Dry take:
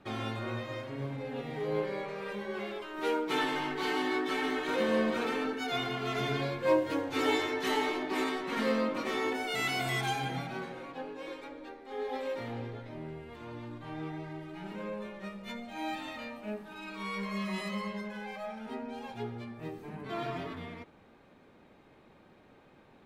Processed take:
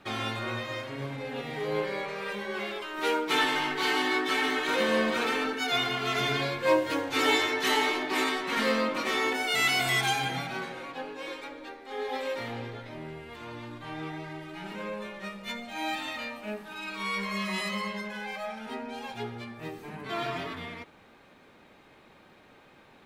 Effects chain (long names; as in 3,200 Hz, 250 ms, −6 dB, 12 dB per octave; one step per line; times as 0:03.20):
tilt shelving filter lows −4.5 dB, about 920 Hz
level +4.5 dB